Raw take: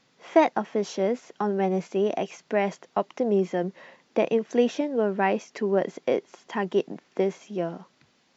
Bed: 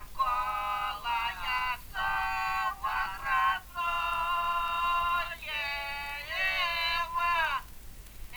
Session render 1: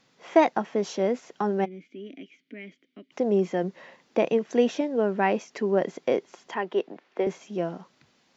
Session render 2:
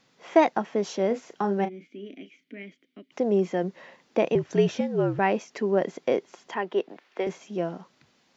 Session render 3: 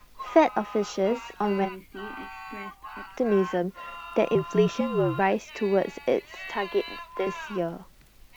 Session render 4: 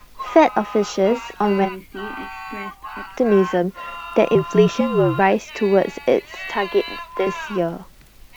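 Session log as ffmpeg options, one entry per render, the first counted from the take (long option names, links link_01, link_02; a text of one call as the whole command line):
ffmpeg -i in.wav -filter_complex "[0:a]asplit=3[link_01][link_02][link_03];[link_01]afade=type=out:start_time=1.64:duration=0.02[link_04];[link_02]asplit=3[link_05][link_06][link_07];[link_05]bandpass=frequency=270:width_type=q:width=8,volume=0dB[link_08];[link_06]bandpass=frequency=2290:width_type=q:width=8,volume=-6dB[link_09];[link_07]bandpass=frequency=3010:width_type=q:width=8,volume=-9dB[link_10];[link_08][link_09][link_10]amix=inputs=3:normalize=0,afade=type=in:start_time=1.64:duration=0.02,afade=type=out:start_time=3.11:duration=0.02[link_11];[link_03]afade=type=in:start_time=3.11:duration=0.02[link_12];[link_04][link_11][link_12]amix=inputs=3:normalize=0,asettb=1/sr,asplit=3[link_13][link_14][link_15];[link_13]atrim=end=6.544[link_16];[link_14]atrim=start=6.54:end=7.27,asetpts=PTS-STARTPTS,afade=type=in:duration=0.004:curve=qsin,afade=type=out:start_time=0.726:duration=0.004:curve=qsin,acrossover=split=300 4100:gain=0.178 1 0.158[link_17][link_18][link_19];[link_17][link_18][link_19]amix=inputs=3:normalize=0[link_20];[link_15]atrim=start=7.266[link_21];[link_16][link_20]acrossfade=duration=0.004:curve1=hsin:curve2=qsin[link_22];[link_22][link_21]acrossfade=duration=0.004:curve1=qsin:curve2=hsin" out.wav
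ffmpeg -i in.wav -filter_complex "[0:a]asettb=1/sr,asplit=3[link_01][link_02][link_03];[link_01]atrim=end=1.074[link_04];[link_02]atrim=start=1.07:end=2.63,asetpts=PTS-STARTPTS,afade=type=in:duration=0.004:curve=qsin,afade=type=out:start_time=1.556:duration=0.004:curve=qsin,asplit=2[link_05][link_06];[link_06]adelay=35,volume=-10.5dB[link_07];[link_05][link_07]amix=inputs=2:normalize=0,atrim=end_sample=68796[link_08];[link_03]atrim=start=2.626[link_09];[link_04][link_08]acrossfade=duration=0.004:curve1=hsin:curve2=qsin[link_10];[link_10][link_09]acrossfade=duration=0.004:curve1=qsin:curve2=hsin,asettb=1/sr,asplit=3[link_11][link_12][link_13];[link_11]atrim=end=4.354[link_14];[link_12]atrim=start=4.35:end=5.19,asetpts=PTS-STARTPTS,afade=type=in:duration=0.004:curve=qsin,afade=type=out:start_time=0.836:duration=0.004:curve=qsin,afreqshift=-61[link_15];[link_13]atrim=start=5.186[link_16];[link_14][link_15]acrossfade=duration=0.004:curve1=hsin:curve2=qsin[link_17];[link_17][link_16]acrossfade=duration=0.004:curve1=qsin:curve2=hsin,asettb=1/sr,asplit=3[link_18][link_19][link_20];[link_18]atrim=end=6.894[link_21];[link_19]atrim=start=6.89:end=7.29,asetpts=PTS-STARTPTS,afade=type=in:duration=0.004:curve=qsin,afade=type=out:start_time=0.396:duration=0.004:curve=qsin,tiltshelf=frequency=910:gain=-4.5[link_22];[link_20]atrim=start=7.286[link_23];[link_21][link_22]acrossfade=duration=0.004:curve1=hsin:curve2=qsin[link_24];[link_24][link_23]acrossfade=duration=0.004:curve1=qsin:curve2=hsin" out.wav
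ffmpeg -i in.wav -i bed.wav -filter_complex "[1:a]volume=-9.5dB[link_01];[0:a][link_01]amix=inputs=2:normalize=0" out.wav
ffmpeg -i in.wav -af "volume=7.5dB,alimiter=limit=-2dB:level=0:latency=1" out.wav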